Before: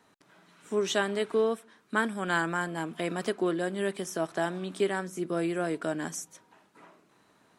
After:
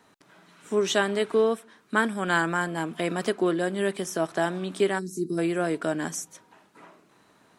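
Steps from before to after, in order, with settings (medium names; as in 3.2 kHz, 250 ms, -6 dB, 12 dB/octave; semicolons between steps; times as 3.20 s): time-frequency box 4.99–5.38 s, 450–3800 Hz -22 dB; trim +4 dB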